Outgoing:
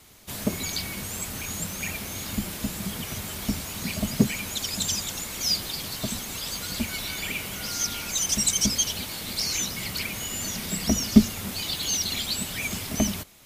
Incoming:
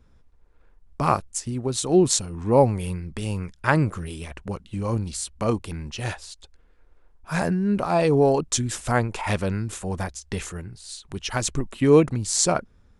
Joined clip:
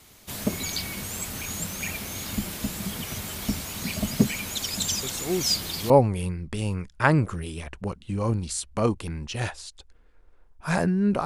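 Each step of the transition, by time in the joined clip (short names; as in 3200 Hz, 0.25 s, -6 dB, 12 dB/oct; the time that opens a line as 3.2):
outgoing
5.03 add incoming from 1.67 s 0.87 s -10 dB
5.9 switch to incoming from 2.54 s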